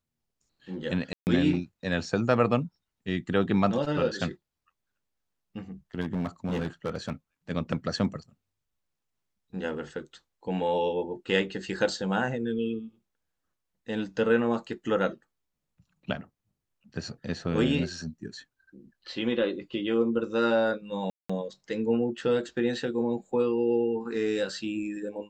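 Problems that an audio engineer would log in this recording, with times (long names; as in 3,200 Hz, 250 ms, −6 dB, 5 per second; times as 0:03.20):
0:01.13–0:01.27: drop-out 139 ms
0:06.00–0:07.13: clipping −25 dBFS
0:21.10–0:21.30: drop-out 195 ms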